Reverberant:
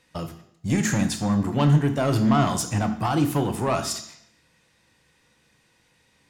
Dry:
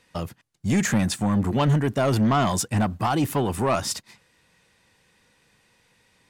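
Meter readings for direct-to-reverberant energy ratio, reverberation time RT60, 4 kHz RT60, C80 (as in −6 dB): 7.0 dB, 0.70 s, 0.70 s, 13.5 dB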